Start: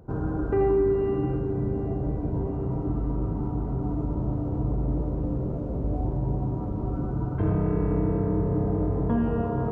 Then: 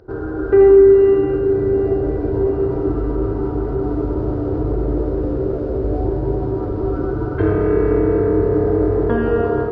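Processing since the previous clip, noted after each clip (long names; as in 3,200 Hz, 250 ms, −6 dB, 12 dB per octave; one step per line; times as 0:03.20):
drawn EQ curve 110 Hz 0 dB, 160 Hz −10 dB, 270 Hz −1 dB, 380 Hz +12 dB, 540 Hz +4 dB, 1,000 Hz 0 dB, 1,500 Hz +11 dB, 2,500 Hz +5 dB, 4,800 Hz +11 dB, 7,000 Hz −3 dB
automatic gain control gain up to 6 dB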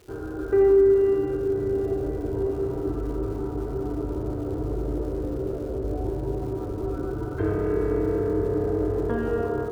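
surface crackle 440 per second −35 dBFS
level −8.5 dB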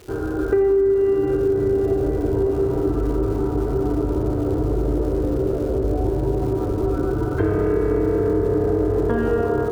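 downward compressor 6 to 1, threshold −24 dBFS, peak gain reduction 9.5 dB
level +8.5 dB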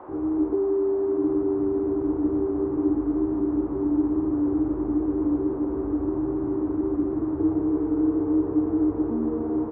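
formant resonators in series u
double-tracking delay 13 ms −4.5 dB
noise in a band 240–1,100 Hz −44 dBFS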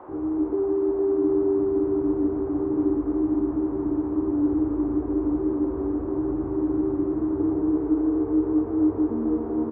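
single-tap delay 462 ms −5 dB
level −1 dB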